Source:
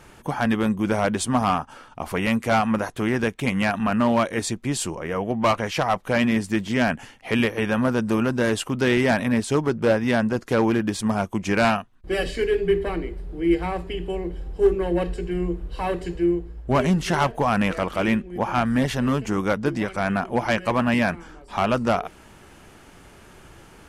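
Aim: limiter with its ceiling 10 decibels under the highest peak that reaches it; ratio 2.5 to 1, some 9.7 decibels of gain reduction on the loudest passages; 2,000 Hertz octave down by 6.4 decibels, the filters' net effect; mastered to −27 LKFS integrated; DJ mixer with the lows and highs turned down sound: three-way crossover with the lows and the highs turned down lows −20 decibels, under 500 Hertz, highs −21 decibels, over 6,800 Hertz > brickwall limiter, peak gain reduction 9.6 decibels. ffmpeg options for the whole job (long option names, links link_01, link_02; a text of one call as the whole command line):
ffmpeg -i in.wav -filter_complex "[0:a]equalizer=frequency=2000:width_type=o:gain=-8.5,acompressor=threshold=-29dB:ratio=2.5,alimiter=level_in=2dB:limit=-24dB:level=0:latency=1,volume=-2dB,acrossover=split=500 6800:gain=0.1 1 0.0891[link_01][link_02][link_03];[link_01][link_02][link_03]amix=inputs=3:normalize=0,volume=18dB,alimiter=limit=-16dB:level=0:latency=1" out.wav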